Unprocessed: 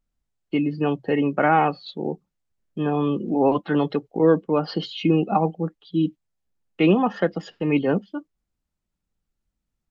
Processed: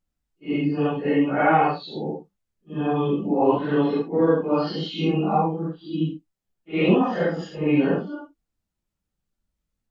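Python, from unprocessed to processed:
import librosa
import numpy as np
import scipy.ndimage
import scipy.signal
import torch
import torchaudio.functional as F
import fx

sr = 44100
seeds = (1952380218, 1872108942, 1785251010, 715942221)

y = fx.phase_scramble(x, sr, seeds[0], window_ms=200)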